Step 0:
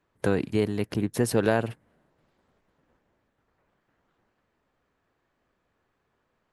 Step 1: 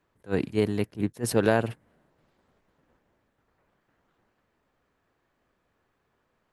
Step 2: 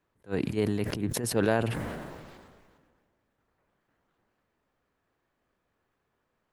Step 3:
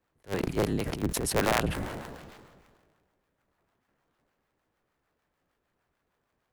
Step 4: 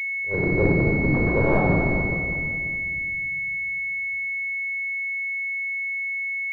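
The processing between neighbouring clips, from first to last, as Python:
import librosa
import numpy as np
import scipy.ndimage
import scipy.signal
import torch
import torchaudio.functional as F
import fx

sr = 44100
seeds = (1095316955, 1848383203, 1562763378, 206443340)

y1 = fx.attack_slew(x, sr, db_per_s=350.0)
y1 = F.gain(torch.from_numpy(y1), 1.0).numpy()
y2 = fx.sustainer(y1, sr, db_per_s=32.0)
y2 = F.gain(torch.from_numpy(y2), -4.5).numpy()
y3 = fx.cycle_switch(y2, sr, every=3, mode='inverted')
y3 = fx.harmonic_tremolo(y3, sr, hz=6.6, depth_pct=50, crossover_hz=670.0)
y3 = F.gain(torch.from_numpy(y3), 2.0).numpy()
y4 = fx.room_shoebox(y3, sr, seeds[0], volume_m3=3200.0, walls='mixed', distance_m=4.9)
y4 = fx.pwm(y4, sr, carrier_hz=2200.0)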